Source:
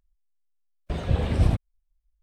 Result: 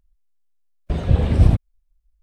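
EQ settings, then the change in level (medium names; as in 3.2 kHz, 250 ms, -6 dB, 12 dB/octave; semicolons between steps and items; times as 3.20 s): bass shelf 450 Hz +6.5 dB; +1.0 dB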